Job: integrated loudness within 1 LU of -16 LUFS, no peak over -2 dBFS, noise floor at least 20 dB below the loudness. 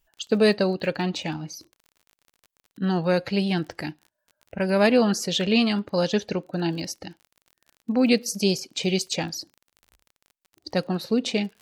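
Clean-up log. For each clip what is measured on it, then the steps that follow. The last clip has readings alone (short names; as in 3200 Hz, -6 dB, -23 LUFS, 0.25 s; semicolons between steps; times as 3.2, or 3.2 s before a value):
ticks 34/s; loudness -24.5 LUFS; peak -7.0 dBFS; loudness target -16.0 LUFS
-> de-click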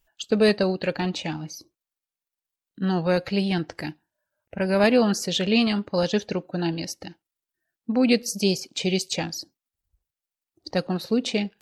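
ticks 0.086/s; loudness -24.5 LUFS; peak -7.0 dBFS; loudness target -16.0 LUFS
-> gain +8.5 dB; limiter -2 dBFS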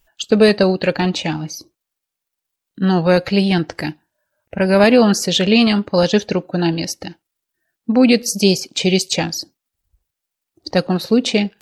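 loudness -16.0 LUFS; peak -2.0 dBFS; noise floor -83 dBFS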